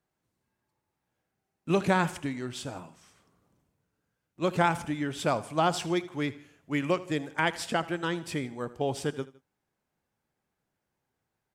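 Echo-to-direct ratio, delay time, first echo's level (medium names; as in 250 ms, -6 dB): -17.5 dB, 80 ms, -18.5 dB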